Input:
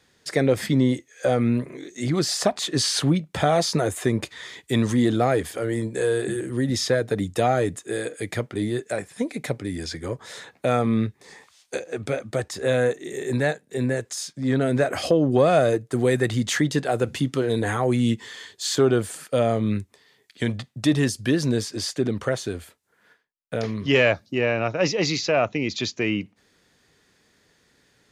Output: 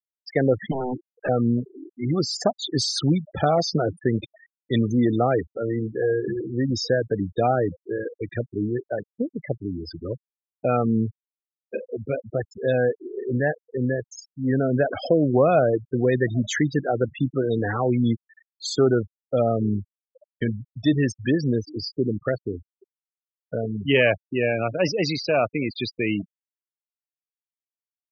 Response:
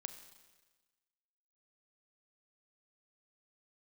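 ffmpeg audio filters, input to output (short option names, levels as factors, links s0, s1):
-filter_complex "[0:a]asettb=1/sr,asplit=3[s0][s1][s2];[s0]atrim=end=0.714[s3];[s1]atrim=start=0.71:end=1.29,asetpts=PTS-STARTPTS,afade=t=in:d=0.004:c=qsin,afade=t=out:st=0.576:d=0.004:c=qsin,aeval=exprs='0.0944*(abs(mod(val(0)/0.0944+3,4)-2)-1)':c=same[s4];[s2]atrim=start=1.286[s5];[s3][s4]acrossfade=d=0.004:c1=hsin:c2=qsin[s6];[s6][s5]acrossfade=d=0.004:c1=qsin:c2=hsin,aecho=1:1:814|1628|2442:0.0668|0.0334|0.0167,afftfilt=real='re*gte(hypot(re,im),0.0891)':imag='im*gte(hypot(re,im),0.0891)':win_size=1024:overlap=0.75"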